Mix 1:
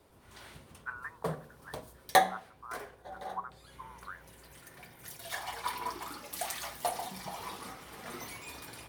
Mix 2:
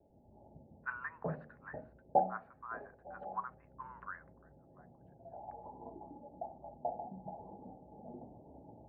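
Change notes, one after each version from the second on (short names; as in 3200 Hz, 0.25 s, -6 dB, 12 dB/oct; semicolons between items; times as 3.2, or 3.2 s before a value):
background: add rippled Chebyshev low-pass 870 Hz, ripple 6 dB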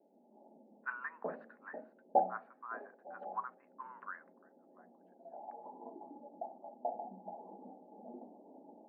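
master: add brick-wall FIR high-pass 190 Hz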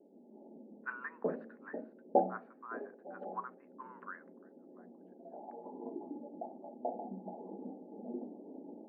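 master: add resonant low shelf 550 Hz +8 dB, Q 1.5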